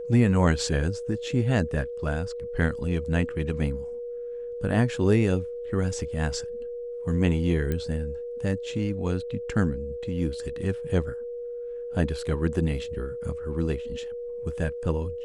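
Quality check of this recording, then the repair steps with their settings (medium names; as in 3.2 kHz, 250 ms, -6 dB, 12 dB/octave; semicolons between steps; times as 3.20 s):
whine 480 Hz -32 dBFS
7.72 s: pop -16 dBFS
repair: de-click; band-stop 480 Hz, Q 30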